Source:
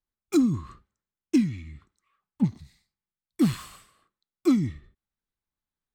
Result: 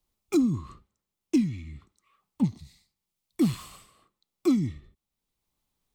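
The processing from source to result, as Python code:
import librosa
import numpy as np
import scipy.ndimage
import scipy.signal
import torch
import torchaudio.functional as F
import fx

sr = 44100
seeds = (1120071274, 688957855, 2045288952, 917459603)

y = fx.peak_eq(x, sr, hz=1600.0, db=-9.5, octaves=0.53)
y = fx.band_squash(y, sr, depth_pct=40)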